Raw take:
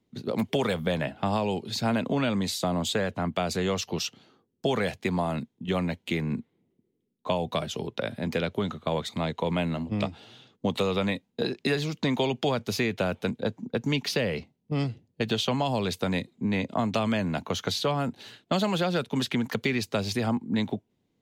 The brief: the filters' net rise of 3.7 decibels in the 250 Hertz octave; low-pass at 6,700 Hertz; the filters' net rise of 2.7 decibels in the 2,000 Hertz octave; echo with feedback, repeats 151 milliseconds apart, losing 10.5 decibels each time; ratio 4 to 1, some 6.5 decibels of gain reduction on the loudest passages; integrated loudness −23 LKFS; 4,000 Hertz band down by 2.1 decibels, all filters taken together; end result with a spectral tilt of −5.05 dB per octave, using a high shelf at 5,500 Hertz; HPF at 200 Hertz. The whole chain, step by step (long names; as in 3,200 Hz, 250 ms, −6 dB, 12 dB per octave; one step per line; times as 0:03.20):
high-pass filter 200 Hz
low-pass filter 6,700 Hz
parametric band 250 Hz +7 dB
parametric band 2,000 Hz +4 dB
parametric band 4,000 Hz −6.5 dB
high-shelf EQ 5,500 Hz +8 dB
downward compressor 4 to 1, threshold −27 dBFS
repeating echo 151 ms, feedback 30%, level −10.5 dB
level +8.5 dB